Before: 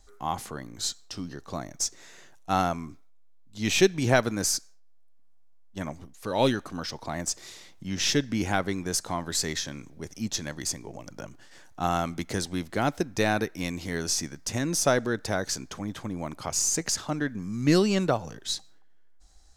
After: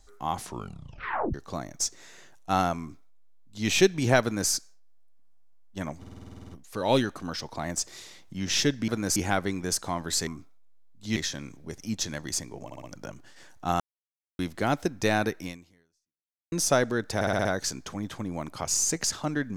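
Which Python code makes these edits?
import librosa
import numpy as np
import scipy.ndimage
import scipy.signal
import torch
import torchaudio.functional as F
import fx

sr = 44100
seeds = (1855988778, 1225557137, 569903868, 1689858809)

y = fx.edit(x, sr, fx.tape_stop(start_s=0.37, length_s=0.97),
    fx.duplicate(start_s=2.79, length_s=0.89, to_s=9.49),
    fx.duplicate(start_s=4.22, length_s=0.28, to_s=8.38),
    fx.stutter(start_s=5.99, slice_s=0.05, count=11),
    fx.stutter(start_s=10.98, slice_s=0.06, count=4),
    fx.silence(start_s=11.95, length_s=0.59),
    fx.fade_out_span(start_s=13.57, length_s=1.1, curve='exp'),
    fx.stutter(start_s=15.3, slice_s=0.06, count=6), tone=tone)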